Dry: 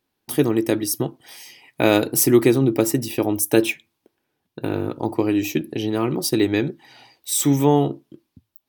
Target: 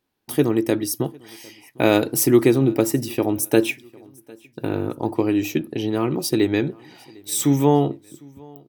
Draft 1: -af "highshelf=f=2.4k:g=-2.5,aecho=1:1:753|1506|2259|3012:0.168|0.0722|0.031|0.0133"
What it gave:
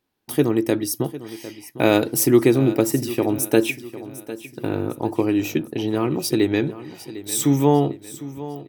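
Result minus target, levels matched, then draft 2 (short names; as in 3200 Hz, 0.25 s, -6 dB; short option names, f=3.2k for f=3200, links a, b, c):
echo-to-direct +10.5 dB
-af "highshelf=f=2.4k:g=-2.5,aecho=1:1:753|1506:0.0501|0.0216"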